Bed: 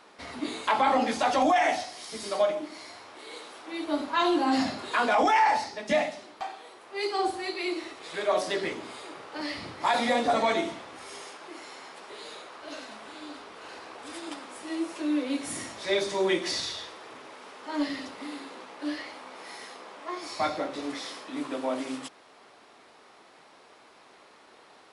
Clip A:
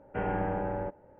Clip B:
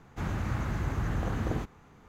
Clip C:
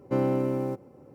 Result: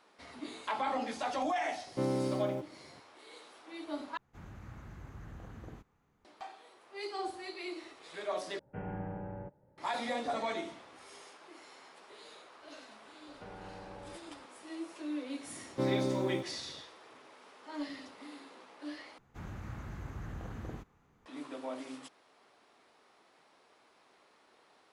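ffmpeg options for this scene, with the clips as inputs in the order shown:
ffmpeg -i bed.wav -i cue0.wav -i cue1.wav -i cue2.wav -filter_complex "[3:a]asplit=2[link_01][link_02];[2:a]asplit=2[link_03][link_04];[1:a]asplit=2[link_05][link_06];[0:a]volume=-10.5dB[link_07];[link_05]equalizer=frequency=140:width=1.4:gain=13[link_08];[link_06]acompressor=threshold=-42dB:ratio=6:attack=3.2:release=140:knee=1:detection=peak[link_09];[link_07]asplit=4[link_10][link_11][link_12][link_13];[link_10]atrim=end=4.174[link_14];[link_03]atrim=end=2.08,asetpts=PTS-STARTPTS,volume=-17.5dB[link_15];[link_11]atrim=start=6.246:end=8.594[link_16];[link_08]atrim=end=1.19,asetpts=PTS-STARTPTS,volume=-13dB[link_17];[link_12]atrim=start=9.776:end=19.184[link_18];[link_04]atrim=end=2.08,asetpts=PTS-STARTPTS,volume=-12dB[link_19];[link_13]atrim=start=21.256[link_20];[link_01]atrim=end=1.14,asetpts=PTS-STARTPTS,volume=-7dB,afade=type=in:duration=0.004:curve=hsin,afade=type=out:start_time=1.136:duration=0.004:curve=hsin,adelay=1860[link_21];[link_09]atrim=end=1.19,asetpts=PTS-STARTPTS,volume=-4dB,afade=type=in:duration=0.004:curve=hsin,afade=type=out:start_time=1.186:duration=0.004:curve=hsin,adelay=13270[link_22];[link_02]atrim=end=1.14,asetpts=PTS-STARTPTS,volume=-6dB,afade=type=in:duration=0.004:curve=hsin,afade=type=out:start_time=1.136:duration=0.004:curve=hsin,adelay=15670[link_23];[link_14][link_15]acrossfade=duration=0.004:curve1=hsin:curve2=hsin[link_24];[link_24][link_16]acrossfade=duration=0.004:curve1=hsin:curve2=hsin[link_25];[link_25][link_17]acrossfade=duration=0.004:curve1=hsin:curve2=hsin[link_26];[link_26][link_18]acrossfade=duration=0.004:curve1=hsin:curve2=hsin[link_27];[link_27][link_19]acrossfade=duration=0.004:curve1=hsin:curve2=hsin[link_28];[link_28][link_20]acrossfade=duration=0.004:curve1=hsin:curve2=hsin[link_29];[link_29][link_21][link_22][link_23]amix=inputs=4:normalize=0" out.wav

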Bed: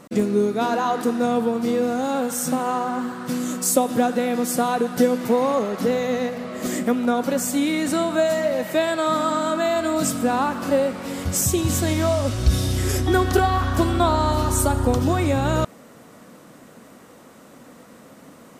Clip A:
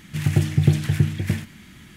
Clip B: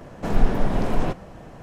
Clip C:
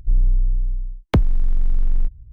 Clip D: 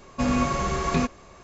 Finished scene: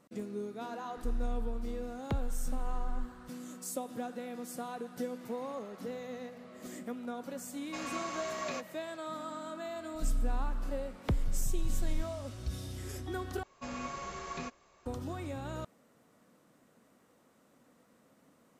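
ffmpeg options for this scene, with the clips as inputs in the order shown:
ffmpeg -i bed.wav -i cue0.wav -i cue1.wav -i cue2.wav -i cue3.wav -filter_complex "[3:a]asplit=2[link_01][link_02];[4:a]asplit=2[link_03][link_04];[0:a]volume=-19.5dB[link_05];[link_01]acrusher=bits=10:mix=0:aa=0.000001[link_06];[link_03]highpass=frequency=1300:poles=1[link_07];[link_04]lowshelf=frequency=320:gain=-10[link_08];[link_05]asplit=2[link_09][link_10];[link_09]atrim=end=13.434[link_11];[link_08]atrim=end=1.43,asetpts=PTS-STARTPTS,volume=-13dB[link_12];[link_10]atrim=start=14.856[link_13];[link_06]atrim=end=2.32,asetpts=PTS-STARTPTS,volume=-17.5dB,afade=type=in:duration=0.004:curve=hsin,afade=type=out:start_time=2.316:duration=0.004:curve=hsin,adelay=970[link_14];[link_07]atrim=end=1.43,asetpts=PTS-STARTPTS,volume=-8.5dB,afade=type=in:duration=0.004:curve=hsin,afade=type=out:start_time=1.426:duration=0.004:curve=hsin,adelay=332514S[link_15];[link_02]atrim=end=2.32,asetpts=PTS-STARTPTS,volume=-14.5dB,afade=type=in:duration=0.004:curve=hsin,afade=type=out:start_time=2.316:duration=0.004:curve=hsin,adelay=9950[link_16];[link_11][link_12]acrossfade=duration=0.004:curve1=hsin:curve2=hsin[link_17];[link_17][link_13]acrossfade=duration=0.004:curve1=hsin:curve2=hsin[link_18];[link_18][link_14][link_15][link_16]amix=inputs=4:normalize=0" out.wav

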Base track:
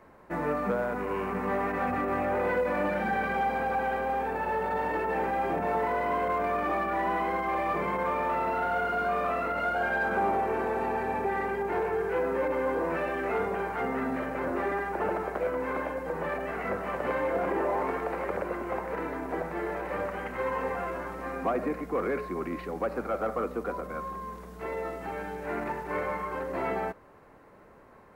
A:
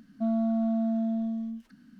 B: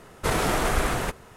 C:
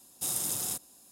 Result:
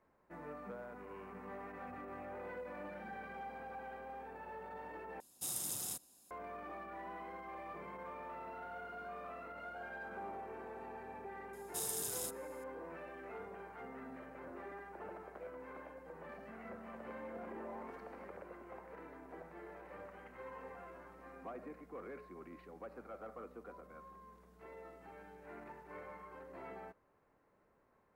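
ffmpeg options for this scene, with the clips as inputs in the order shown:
ffmpeg -i bed.wav -i cue0.wav -i cue1.wav -i cue2.wav -filter_complex "[3:a]asplit=2[link_01][link_02];[0:a]volume=-19dB[link_03];[1:a]acompressor=threshold=-48dB:ratio=6:attack=3.2:release=140:knee=1:detection=peak[link_04];[link_03]asplit=2[link_05][link_06];[link_05]atrim=end=5.204[link_07];[link_01]atrim=end=1.11,asetpts=PTS-STARTPTS,volume=-8.5dB[link_08];[link_06]atrim=start=6.306[link_09];[link_02]atrim=end=1.11,asetpts=PTS-STARTPTS,volume=-8.5dB,afade=type=in:duration=0.004:curve=hsin,afade=type=out:start_time=1.106:duration=0.004:curve=hsin,adelay=11530[link_10];[link_04]atrim=end=1.99,asetpts=PTS-STARTPTS,volume=-7dB,afade=type=in:duration=0.004:curve=hsin,afade=type=out:start_time=1.986:duration=0.004:curve=hsin,adelay=16290[link_11];[link_07][link_08]acrossfade=duration=0.004:curve1=hsin:curve2=hsin[link_12];[link_12][link_09]acrossfade=duration=0.004:curve1=hsin:curve2=hsin[link_13];[link_13][link_10][link_11]amix=inputs=3:normalize=0" out.wav

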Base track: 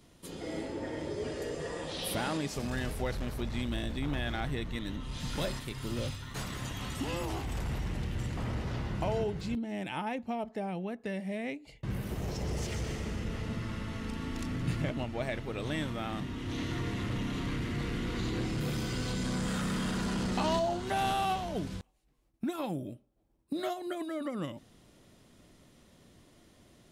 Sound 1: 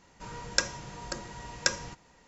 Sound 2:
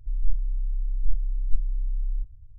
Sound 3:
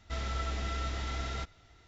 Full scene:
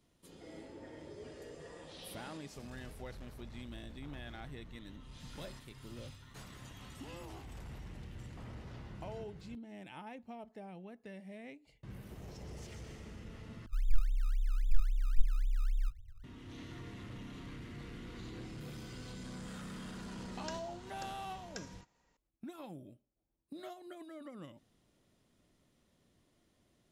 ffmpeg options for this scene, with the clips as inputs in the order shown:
ffmpeg -i bed.wav -i cue0.wav -i cue1.wav -filter_complex "[0:a]volume=-13dB[link_01];[2:a]acrusher=samples=24:mix=1:aa=0.000001:lfo=1:lforange=24:lforate=3.7[link_02];[1:a]alimiter=limit=-12dB:level=0:latency=1:release=71[link_03];[link_01]asplit=2[link_04][link_05];[link_04]atrim=end=13.664[link_06];[link_02]atrim=end=2.58,asetpts=PTS-STARTPTS,volume=-5.5dB[link_07];[link_05]atrim=start=16.236[link_08];[link_03]atrim=end=2.27,asetpts=PTS-STARTPTS,volume=-15dB,afade=type=in:duration=0.004:curve=hsin,afade=type=out:start_time=2.266:duration=0.004:curve=hsin,adelay=19900[link_09];[link_06][link_07]acrossfade=duration=0.004:curve1=hsin:curve2=hsin[link_10];[link_10][link_08]acrossfade=duration=0.004:curve1=hsin:curve2=hsin[link_11];[link_11][link_09]amix=inputs=2:normalize=0" out.wav

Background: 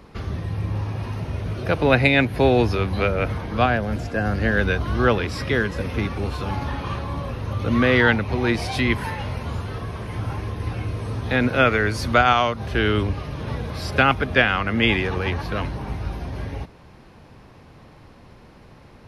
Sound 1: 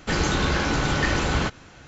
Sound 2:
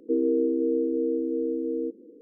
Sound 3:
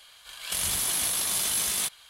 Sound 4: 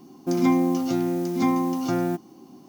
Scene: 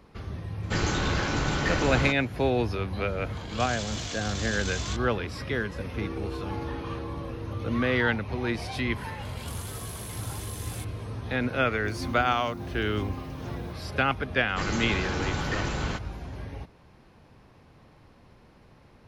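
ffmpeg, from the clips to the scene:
ffmpeg -i bed.wav -i cue0.wav -i cue1.wav -i cue2.wav -i cue3.wav -filter_complex "[1:a]asplit=2[link_01][link_02];[3:a]asplit=2[link_03][link_04];[0:a]volume=-8dB[link_05];[link_03]aresample=16000,aresample=44100[link_06];[2:a]bandpass=frequency=380:width_type=q:width=3.9:csg=0[link_07];[link_04]acompressor=threshold=-33dB:ratio=6:attack=3.2:release=140:knee=1:detection=peak[link_08];[link_01]atrim=end=1.87,asetpts=PTS-STARTPTS,volume=-4.5dB,afade=type=in:duration=0.004:curve=hsin,afade=type=out:start_time=1.866:duration=0.004:curve=hsin,adelay=630[link_09];[link_06]atrim=end=2.09,asetpts=PTS-STARTPTS,volume=-5dB,afade=type=in:duration=0.004:curve=hsin,afade=type=out:start_time=2.086:duration=0.004:curve=hsin,adelay=3080[link_10];[link_07]atrim=end=2.21,asetpts=PTS-STARTPTS,volume=-9dB,afade=type=in:duration=0.004:curve=hsin,afade=type=out:start_time=2.206:duration=0.004:curve=hsin,adelay=5910[link_11];[link_08]atrim=end=2.09,asetpts=PTS-STARTPTS,volume=-7dB,afade=type=in:duration=0.004:curve=hsin,afade=type=out:start_time=2.086:duration=0.004:curve=hsin,adelay=8960[link_12];[4:a]atrim=end=2.68,asetpts=PTS-STARTPTS,volume=-17.5dB,afade=type=in:duration=0.004:curve=hsin,afade=type=out:start_time=2.676:duration=0.004:curve=hsin,adelay=11570[link_13];[link_02]atrim=end=1.87,asetpts=PTS-STARTPTS,volume=-8dB,afade=type=in:duration=0.004:curve=hsin,afade=type=out:start_time=1.866:duration=0.004:curve=hsin,adelay=14490[link_14];[link_05][link_09][link_10][link_11][link_12][link_13][link_14]amix=inputs=7:normalize=0" out.wav

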